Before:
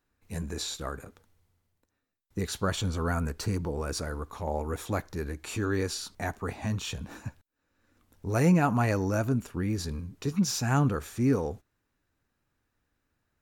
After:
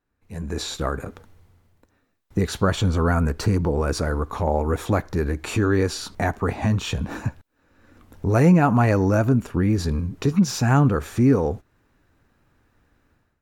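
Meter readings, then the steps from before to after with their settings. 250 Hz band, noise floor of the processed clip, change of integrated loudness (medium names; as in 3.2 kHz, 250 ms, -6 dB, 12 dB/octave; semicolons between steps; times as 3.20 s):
+8.5 dB, -70 dBFS, +8.0 dB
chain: compression 1.5:1, threshold -44 dBFS, peak gain reduction 9.5 dB; treble shelf 3 kHz -9.5 dB; level rider gain up to 16 dB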